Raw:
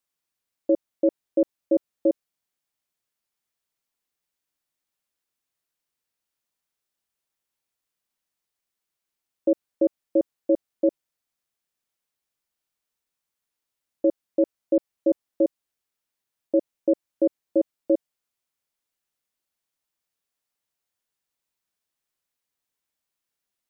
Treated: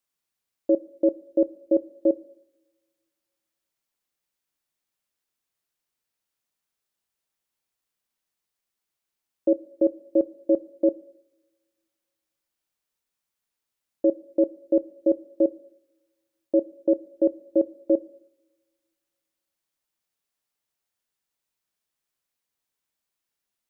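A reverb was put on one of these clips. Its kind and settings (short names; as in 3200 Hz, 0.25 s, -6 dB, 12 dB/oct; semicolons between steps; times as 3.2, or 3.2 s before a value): two-slope reverb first 0.78 s, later 2.5 s, from -28 dB, DRR 17 dB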